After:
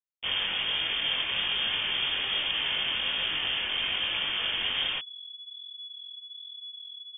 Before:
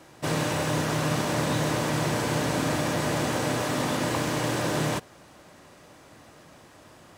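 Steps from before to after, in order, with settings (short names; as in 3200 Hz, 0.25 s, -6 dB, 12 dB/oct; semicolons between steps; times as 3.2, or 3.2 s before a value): level-crossing sampler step -26 dBFS; inverted band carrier 3400 Hz; chorus 1.2 Hz, delay 18.5 ms, depth 3.5 ms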